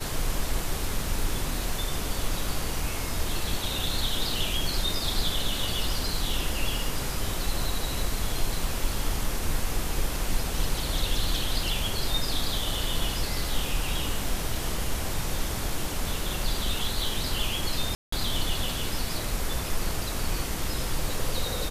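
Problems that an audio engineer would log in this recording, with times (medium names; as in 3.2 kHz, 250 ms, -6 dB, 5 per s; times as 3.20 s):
17.95–18.12 s: dropout 174 ms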